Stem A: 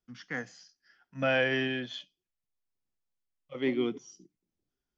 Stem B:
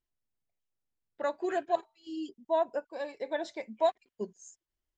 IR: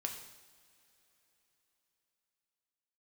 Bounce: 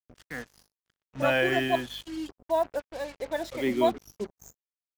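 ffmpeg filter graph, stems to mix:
-filter_complex "[0:a]dynaudnorm=f=290:g=3:m=6dB,volume=-4.5dB[a];[1:a]aeval=exprs='val(0)+0.00178*(sin(2*PI*50*n/s)+sin(2*PI*2*50*n/s)/2+sin(2*PI*3*50*n/s)/3+sin(2*PI*4*50*n/s)/4+sin(2*PI*5*50*n/s)/5)':c=same,volume=2dB[b];[a][b]amix=inputs=2:normalize=0,acrusher=bits=6:mix=0:aa=0.5"

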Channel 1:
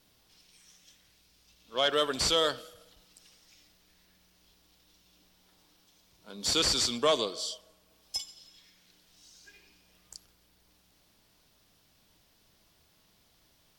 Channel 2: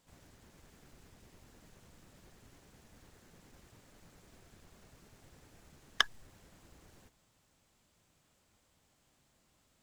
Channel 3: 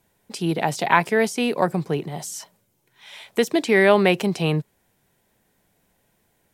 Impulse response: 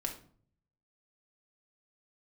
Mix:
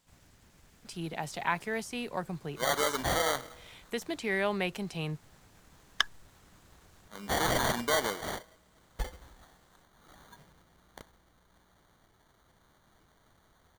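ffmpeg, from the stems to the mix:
-filter_complex "[0:a]alimiter=limit=-19dB:level=0:latency=1:release=63,acrusher=samples=17:mix=1:aa=0.000001,adelay=850,volume=2.5dB[a];[1:a]volume=1dB[b];[2:a]adelay=550,volume=-11.5dB[c];[a][b][c]amix=inputs=3:normalize=0,equalizer=f=400:t=o:w=2:g=-5"

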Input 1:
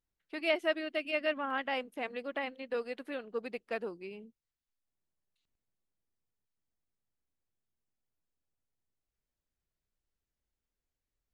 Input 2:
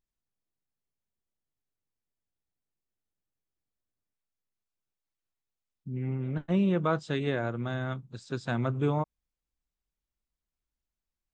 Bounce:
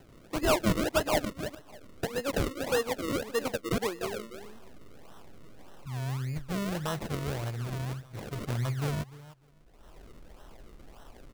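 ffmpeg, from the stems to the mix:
-filter_complex "[0:a]highpass=190,bass=f=250:g=-1,treble=f=4k:g=7,aeval=exprs='0.178*sin(PI/2*2.51*val(0)/0.178)':c=same,volume=-4dB,asplit=3[a][b][c];[a]atrim=end=1.25,asetpts=PTS-STARTPTS,afade=t=out:st=1.246:d=0.004:c=hsin[d];[b]atrim=start=1.25:end=2.03,asetpts=PTS-STARTPTS,volume=0[e];[c]atrim=start=2.03,asetpts=PTS-STARTPTS,afade=t=in:d=0.004:c=hsin[f];[d][e][f]concat=n=3:v=0:a=1,asplit=3[g][h][i];[h]volume=-9dB[j];[1:a]acompressor=mode=upward:threshold=-41dB:ratio=2.5,aexciter=amount=5:drive=8.4:freq=3.4k,asubboost=boost=11:cutoff=73,volume=-5.5dB,asplit=2[k][l];[l]volume=-17.5dB[m];[i]apad=whole_len=499882[n];[k][n]sidechaincompress=threshold=-40dB:ratio=8:attack=16:release=577[o];[j][m]amix=inputs=2:normalize=0,aecho=0:1:300|600|900:1|0.18|0.0324[p];[g][o][p]amix=inputs=3:normalize=0,acrusher=samples=37:mix=1:aa=0.000001:lfo=1:lforange=37:lforate=1.7"

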